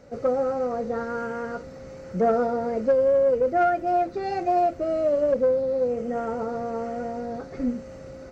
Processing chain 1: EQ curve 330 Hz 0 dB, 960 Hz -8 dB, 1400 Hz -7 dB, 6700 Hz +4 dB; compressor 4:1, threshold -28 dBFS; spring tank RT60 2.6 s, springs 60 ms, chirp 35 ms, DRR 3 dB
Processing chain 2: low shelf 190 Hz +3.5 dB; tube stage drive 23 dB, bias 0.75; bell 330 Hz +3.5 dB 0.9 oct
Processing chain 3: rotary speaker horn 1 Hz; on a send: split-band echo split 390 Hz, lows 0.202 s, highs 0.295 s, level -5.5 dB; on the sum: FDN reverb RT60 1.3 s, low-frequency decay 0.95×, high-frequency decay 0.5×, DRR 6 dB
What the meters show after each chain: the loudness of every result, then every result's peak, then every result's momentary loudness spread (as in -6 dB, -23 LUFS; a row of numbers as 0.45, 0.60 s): -30.5, -29.0, -25.0 LUFS; -17.0, -18.5, -9.5 dBFS; 6, 11, 10 LU